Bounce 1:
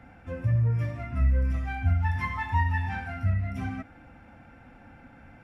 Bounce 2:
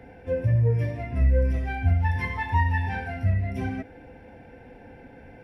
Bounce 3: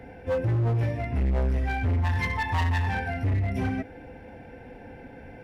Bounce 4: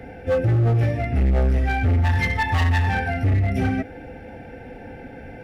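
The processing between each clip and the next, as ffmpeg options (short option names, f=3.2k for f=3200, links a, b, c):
-af "superequalizer=6b=1.41:7b=3.98:8b=1.41:10b=0.251:15b=0.562,volume=2.5dB"
-af "asoftclip=type=hard:threshold=-24.5dB,volume=2.5dB"
-af "asuperstop=centerf=1000:order=20:qfactor=6.3,volume=6dB"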